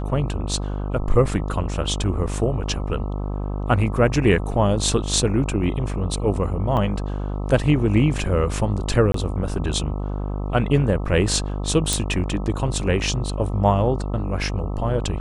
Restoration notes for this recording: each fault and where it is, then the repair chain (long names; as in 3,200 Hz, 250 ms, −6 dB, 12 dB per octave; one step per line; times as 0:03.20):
mains buzz 50 Hz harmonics 26 −26 dBFS
0:06.77: drop-out 3.4 ms
0:09.12–0:09.14: drop-out 23 ms
0:11.93: click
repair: click removal
hum removal 50 Hz, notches 26
repair the gap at 0:06.77, 3.4 ms
repair the gap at 0:09.12, 23 ms